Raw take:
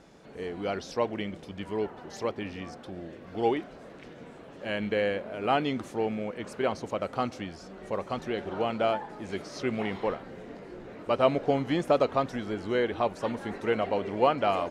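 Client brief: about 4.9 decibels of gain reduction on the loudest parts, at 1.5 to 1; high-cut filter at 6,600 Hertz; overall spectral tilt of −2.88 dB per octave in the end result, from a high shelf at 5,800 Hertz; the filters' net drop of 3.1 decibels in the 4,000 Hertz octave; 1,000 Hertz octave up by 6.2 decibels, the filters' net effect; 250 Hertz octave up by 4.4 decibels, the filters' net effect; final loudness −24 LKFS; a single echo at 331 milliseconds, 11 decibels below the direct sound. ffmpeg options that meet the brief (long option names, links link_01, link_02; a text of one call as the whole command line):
ffmpeg -i in.wav -af "lowpass=6600,equalizer=frequency=250:width_type=o:gain=5,equalizer=frequency=1000:width_type=o:gain=8.5,equalizer=frequency=4000:width_type=o:gain=-6.5,highshelf=frequency=5800:gain=3.5,acompressor=threshold=-26dB:ratio=1.5,aecho=1:1:331:0.282,volume=5dB" out.wav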